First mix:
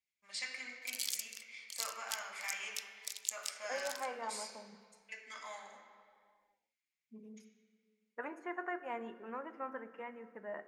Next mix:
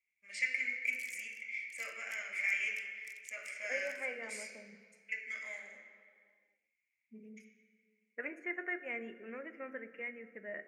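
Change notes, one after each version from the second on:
background -12.0 dB; master: add FFT filter 590 Hz 0 dB, 940 Hz -20 dB, 2.2 kHz +13 dB, 3.8 kHz -12 dB, 5.8 kHz -3 dB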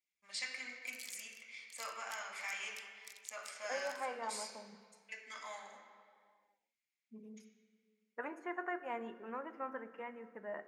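master: remove FFT filter 590 Hz 0 dB, 940 Hz -20 dB, 2.2 kHz +13 dB, 3.8 kHz -12 dB, 5.8 kHz -3 dB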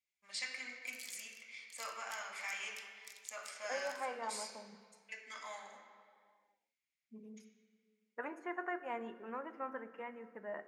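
background: send +6.5 dB

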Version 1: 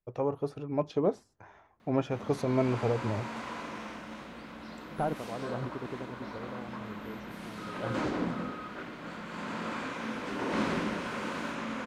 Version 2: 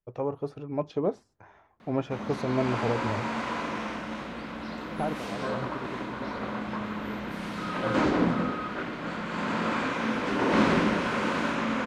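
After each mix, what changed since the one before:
background +8.0 dB; master: add treble shelf 8.9 kHz -11 dB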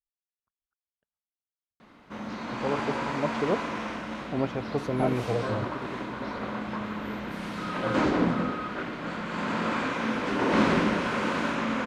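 first voice: entry +2.45 s

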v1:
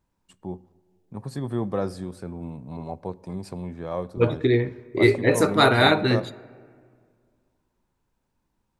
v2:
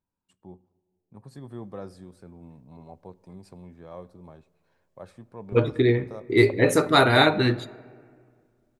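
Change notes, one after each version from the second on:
first voice -11.5 dB; second voice: entry +1.35 s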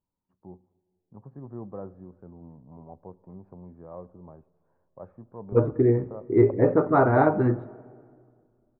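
master: add low-pass 1.2 kHz 24 dB/octave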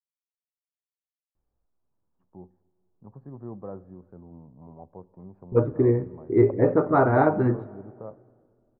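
first voice: entry +1.90 s

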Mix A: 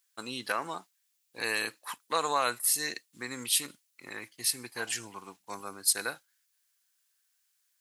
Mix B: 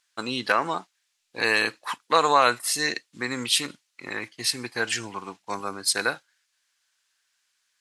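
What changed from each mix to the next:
first voice +10.0 dB; master: add distance through air 78 m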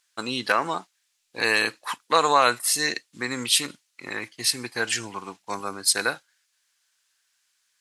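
master: add treble shelf 7.6 kHz +6.5 dB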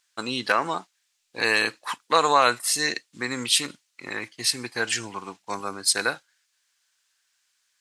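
master: add peaking EQ 11 kHz -7 dB 0.2 oct

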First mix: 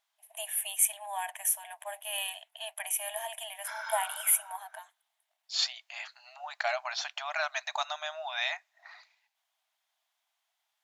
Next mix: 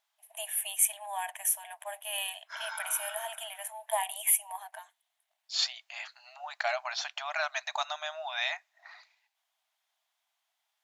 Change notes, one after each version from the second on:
background: entry -1.15 s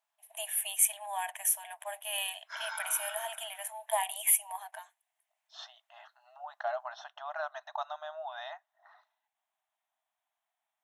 second voice: add boxcar filter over 19 samples

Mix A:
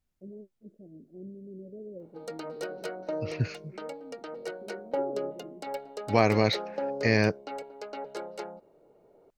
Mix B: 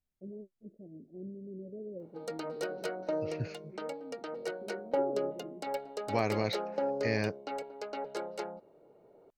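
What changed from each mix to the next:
second voice -8.5 dB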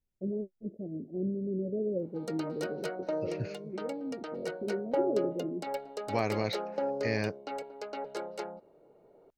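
first voice +11.0 dB

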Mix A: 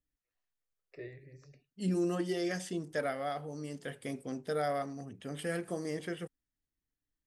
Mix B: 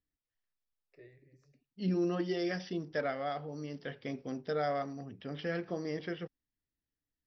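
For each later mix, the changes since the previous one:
first voice -10.5 dB; second voice: add brick-wall FIR low-pass 5.9 kHz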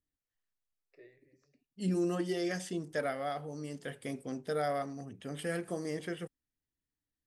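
first voice: add high-pass 230 Hz 12 dB/octave; second voice: remove brick-wall FIR low-pass 5.9 kHz

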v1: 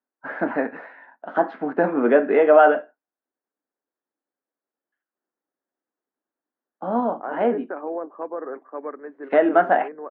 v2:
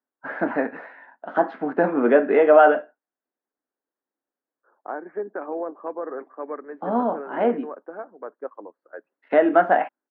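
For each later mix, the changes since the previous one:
second voice: entry -2.35 s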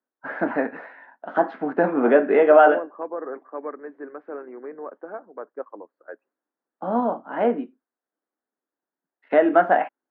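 second voice: entry -2.85 s

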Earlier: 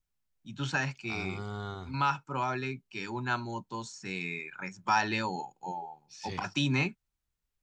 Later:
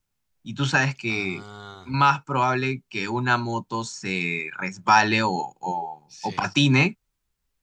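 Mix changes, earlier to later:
first voice +10.0 dB; second voice: add tilt EQ +2 dB/octave

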